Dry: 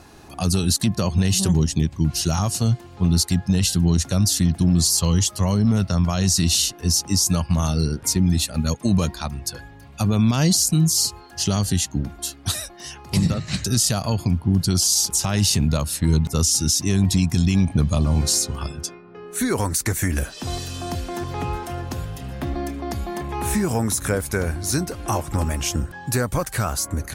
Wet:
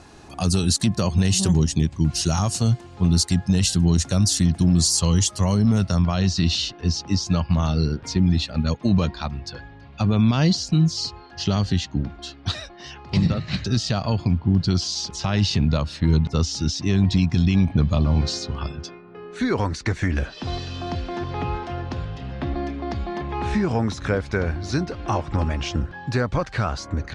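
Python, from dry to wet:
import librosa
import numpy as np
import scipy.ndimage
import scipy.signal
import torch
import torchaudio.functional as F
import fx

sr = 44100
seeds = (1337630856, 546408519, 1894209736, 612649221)

y = fx.lowpass(x, sr, hz=fx.steps((0.0, 9200.0), (6.02, 4600.0)), slope=24)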